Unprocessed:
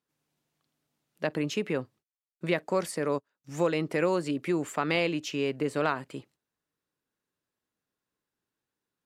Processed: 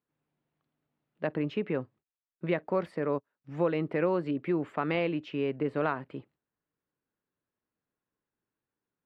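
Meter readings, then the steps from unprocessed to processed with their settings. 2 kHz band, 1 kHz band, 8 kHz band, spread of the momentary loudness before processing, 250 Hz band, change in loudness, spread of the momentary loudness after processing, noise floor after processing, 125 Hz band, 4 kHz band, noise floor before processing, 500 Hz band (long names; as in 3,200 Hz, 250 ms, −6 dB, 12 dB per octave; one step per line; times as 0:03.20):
−4.5 dB, −2.0 dB, below −25 dB, 9 LU, −0.5 dB, −1.5 dB, 9 LU, below −85 dBFS, −0.5 dB, −9.0 dB, below −85 dBFS, −1.0 dB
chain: high-frequency loss of the air 440 metres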